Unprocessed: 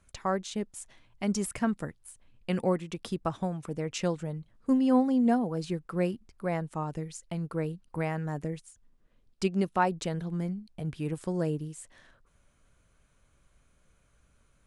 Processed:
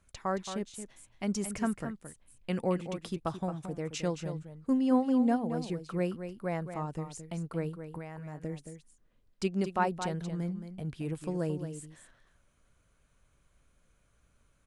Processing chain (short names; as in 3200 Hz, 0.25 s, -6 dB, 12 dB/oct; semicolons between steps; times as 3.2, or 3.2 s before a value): 7.69–8.44 compressor 10:1, threshold -35 dBFS, peak gain reduction 10.5 dB; echo 0.222 s -9.5 dB; gain -3 dB